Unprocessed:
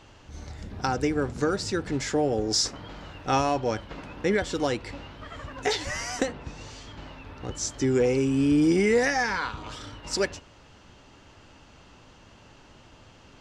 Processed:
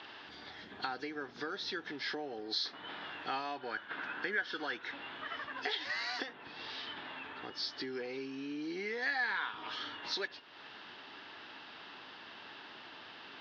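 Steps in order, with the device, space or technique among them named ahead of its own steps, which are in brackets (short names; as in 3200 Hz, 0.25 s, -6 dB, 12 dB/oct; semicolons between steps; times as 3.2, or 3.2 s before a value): 3.61–4.94 bell 1500 Hz +11 dB 0.39 oct; hearing aid with frequency lowering (nonlinear frequency compression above 2700 Hz 1.5:1; compressor 3:1, threshold -43 dBFS, peak gain reduction 18 dB; speaker cabinet 380–6400 Hz, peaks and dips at 540 Hz -9 dB, 1700 Hz +7 dB, 3400 Hz +8 dB); gain +3.5 dB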